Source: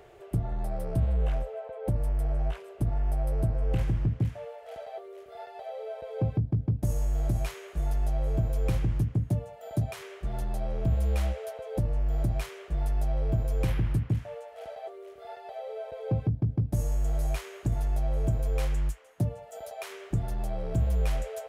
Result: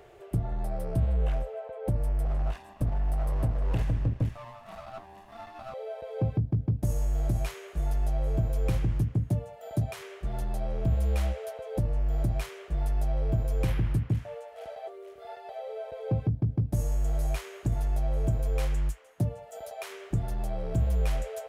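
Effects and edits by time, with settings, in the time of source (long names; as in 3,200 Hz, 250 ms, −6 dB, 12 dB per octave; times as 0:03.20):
0:02.25–0:05.74: lower of the sound and its delayed copy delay 1.1 ms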